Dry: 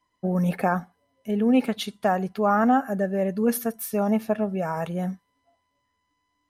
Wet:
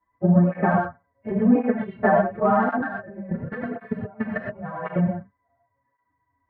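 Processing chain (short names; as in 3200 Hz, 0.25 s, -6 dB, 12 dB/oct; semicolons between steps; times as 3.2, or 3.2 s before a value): frequency quantiser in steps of 2 st; elliptic low-pass 1900 Hz, stop band 70 dB; low shelf 160 Hz +9 dB; 2.69–4.96 negative-ratio compressor -35 dBFS, ratio -1; transient shaper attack +10 dB, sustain -2 dB; non-linear reverb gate 0.14 s rising, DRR -1 dB; tape flanging out of phase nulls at 0.92 Hz, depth 7.9 ms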